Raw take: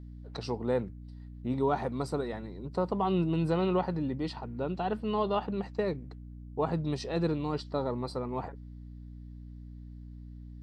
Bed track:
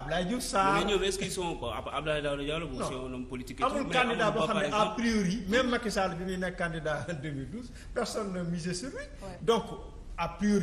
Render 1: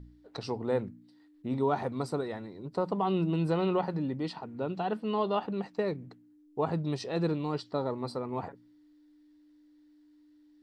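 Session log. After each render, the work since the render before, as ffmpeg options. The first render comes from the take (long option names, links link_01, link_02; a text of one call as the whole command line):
ffmpeg -i in.wav -af "bandreject=frequency=60:width_type=h:width=4,bandreject=frequency=120:width_type=h:width=4,bandreject=frequency=180:width_type=h:width=4,bandreject=frequency=240:width_type=h:width=4" out.wav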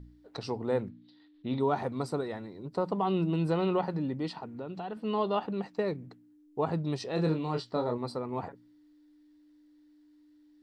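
ffmpeg -i in.wav -filter_complex "[0:a]asettb=1/sr,asplit=3[link_01][link_02][link_03];[link_01]atrim=end=0.894[link_04];[link_02]atrim=start=0.89:end=1.6,asetpts=PTS-STARTPTS,afade=type=in:duration=0.004:curve=qsin,afade=type=out:start_time=0.706:duration=0.004:curve=qsin,lowpass=frequency=3700:width_type=q:width=3.5[link_05];[link_03]atrim=start=1.596[link_06];[link_04][link_05]acrossfade=duration=0.004:curve1=hsin:curve2=qsin[link_07];[link_07][link_06]acrossfade=duration=0.004:curve1=qsin:curve2=hsin,asettb=1/sr,asplit=3[link_08][link_09][link_10];[link_08]atrim=end=4.564[link_11];[link_09]atrim=start=4.56:end=4.97,asetpts=PTS-STARTPTS,afade=type=in:duration=0.004:curve=qsin,afade=type=out:start_time=0.406:duration=0.004:curve=qsin,acompressor=threshold=-37dB:ratio=2.5:attack=3.2:release=140:knee=1:detection=peak[link_12];[link_10]atrim=start=4.966[link_13];[link_11][link_12]acrossfade=duration=0.004:curve1=hsin:curve2=qsin[link_14];[link_14][link_13]acrossfade=duration=0.004:curve1=qsin:curve2=hsin,asettb=1/sr,asplit=3[link_15][link_16][link_17];[link_15]atrim=end=7.154[link_18];[link_16]atrim=start=7.15:end=7.98,asetpts=PTS-STARTPTS,afade=type=in:duration=0.004:curve=qsin,afade=type=out:start_time=0.826:duration=0.004:curve=qsin,asplit=2[link_19][link_20];[link_20]adelay=25,volume=-4.5dB[link_21];[link_19][link_21]amix=inputs=2:normalize=0,atrim=end_sample=36603[link_22];[link_17]atrim=start=7.976[link_23];[link_18][link_22]acrossfade=duration=0.004:curve1=hsin:curve2=qsin[link_24];[link_24][link_23]acrossfade=duration=0.004:curve1=qsin:curve2=hsin" out.wav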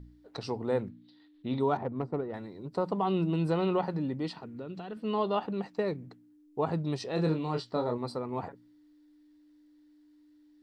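ffmpeg -i in.wav -filter_complex "[0:a]asettb=1/sr,asplit=3[link_01][link_02][link_03];[link_01]atrim=end=1.774[link_04];[link_02]atrim=start=1.77:end=2.34,asetpts=PTS-STARTPTS,afade=type=in:duration=0.004:curve=qsin,afade=type=out:start_time=0.566:duration=0.004:curve=qsin,adynamicsmooth=sensitivity=1:basefreq=880[link_05];[link_03]atrim=start=2.336[link_06];[link_04][link_05]acrossfade=duration=0.004:curve1=hsin:curve2=qsin[link_07];[link_07][link_06]acrossfade=duration=0.004:curve1=qsin:curve2=hsin,asettb=1/sr,asplit=3[link_08][link_09][link_10];[link_08]atrim=end=4.344[link_11];[link_09]atrim=start=4.34:end=5.04,asetpts=PTS-STARTPTS,afade=type=in:duration=0.004:curve=qsin,afade=type=out:start_time=0.696:duration=0.004:curve=qsin,equalizer=frequency=830:width_type=o:width=0.77:gain=-8[link_12];[link_10]atrim=start=5.036[link_13];[link_11][link_12]acrossfade=duration=0.004:curve1=hsin:curve2=qsin[link_14];[link_14][link_13]acrossfade=duration=0.004:curve1=qsin:curve2=hsin" out.wav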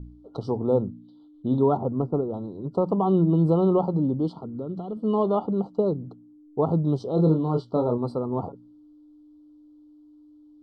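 ffmpeg -i in.wav -af "afftfilt=real='re*(1-between(b*sr/4096,1400,2900))':imag='im*(1-between(b*sr/4096,1400,2900))':win_size=4096:overlap=0.75,tiltshelf=frequency=1400:gain=9.5" out.wav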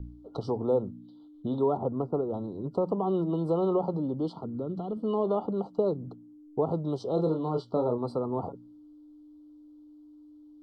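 ffmpeg -i in.wav -filter_complex "[0:a]acrossover=split=400|540[link_01][link_02][link_03];[link_01]acompressor=threshold=-32dB:ratio=6[link_04];[link_03]alimiter=level_in=4dB:limit=-24dB:level=0:latency=1:release=92,volume=-4dB[link_05];[link_04][link_02][link_05]amix=inputs=3:normalize=0" out.wav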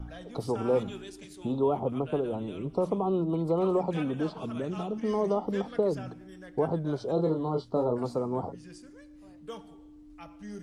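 ffmpeg -i in.wav -i bed.wav -filter_complex "[1:a]volume=-15.5dB[link_01];[0:a][link_01]amix=inputs=2:normalize=0" out.wav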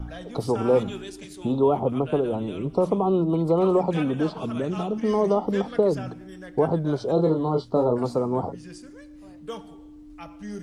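ffmpeg -i in.wav -af "volume=6dB" out.wav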